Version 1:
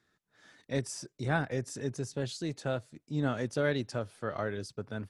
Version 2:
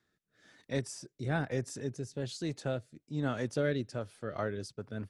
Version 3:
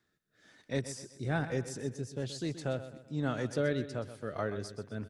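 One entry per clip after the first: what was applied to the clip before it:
rotary cabinet horn 1.1 Hz, later 5.5 Hz, at 3.79 s
feedback delay 127 ms, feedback 42%, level -12.5 dB

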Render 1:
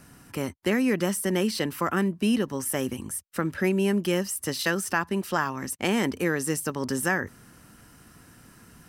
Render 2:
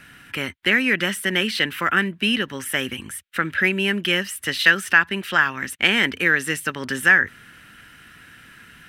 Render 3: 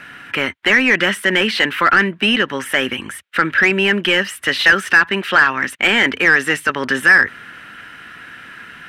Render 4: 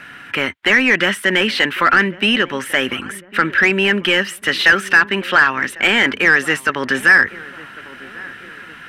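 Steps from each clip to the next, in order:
high-order bell 2.3 kHz +15 dB; trim -1 dB
overdrive pedal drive 17 dB, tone 1.3 kHz, clips at -1.5 dBFS; trim +3.5 dB
filtered feedback delay 1099 ms, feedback 54%, low-pass 1.2 kHz, level -18.5 dB

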